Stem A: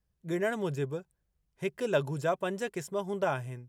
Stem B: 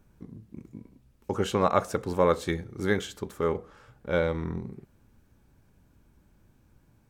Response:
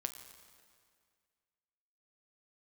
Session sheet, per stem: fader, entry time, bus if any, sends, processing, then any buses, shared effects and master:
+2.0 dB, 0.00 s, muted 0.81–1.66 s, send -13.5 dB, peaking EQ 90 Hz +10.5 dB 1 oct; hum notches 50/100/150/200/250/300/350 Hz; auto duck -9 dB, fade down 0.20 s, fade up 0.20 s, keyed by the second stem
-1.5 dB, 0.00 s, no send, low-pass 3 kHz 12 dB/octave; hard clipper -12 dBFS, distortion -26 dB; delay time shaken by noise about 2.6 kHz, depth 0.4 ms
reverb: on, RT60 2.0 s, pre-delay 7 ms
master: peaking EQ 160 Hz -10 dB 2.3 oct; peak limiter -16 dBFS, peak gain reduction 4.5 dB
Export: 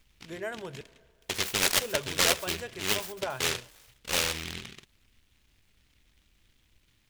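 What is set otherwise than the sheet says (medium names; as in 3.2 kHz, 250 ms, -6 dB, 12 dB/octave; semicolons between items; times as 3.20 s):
stem B: missing low-pass 3 kHz 12 dB/octave; master: missing peak limiter -16 dBFS, peak gain reduction 4.5 dB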